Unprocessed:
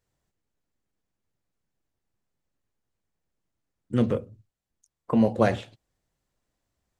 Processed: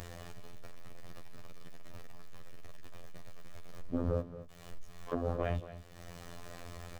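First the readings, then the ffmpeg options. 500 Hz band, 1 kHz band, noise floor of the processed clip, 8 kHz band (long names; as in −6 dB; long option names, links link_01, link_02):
−10.5 dB, −10.5 dB, −51 dBFS, can't be measured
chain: -filter_complex "[0:a]aeval=exprs='val(0)+0.5*0.0794*sgn(val(0))':channel_layout=same,agate=range=-20dB:threshold=-22dB:ratio=16:detection=peak,afwtdn=0.0398,highshelf=frequency=4500:gain=-11.5,aecho=1:1:1.7:0.32,acrossover=split=130|3000[link_01][link_02][link_03];[link_02]acompressor=threshold=-25dB:ratio=6[link_04];[link_01][link_04][link_03]amix=inputs=3:normalize=0,alimiter=level_in=0.5dB:limit=-24dB:level=0:latency=1:release=30,volume=-0.5dB,acompressor=mode=upward:threshold=-30dB:ratio=2.5,afftfilt=real='hypot(re,im)*cos(PI*b)':imag='0':win_size=2048:overlap=0.75,asplit=2[link_05][link_06];[link_06]adelay=227.4,volume=-14dB,highshelf=frequency=4000:gain=-5.12[link_07];[link_05][link_07]amix=inputs=2:normalize=0,volume=3.5dB"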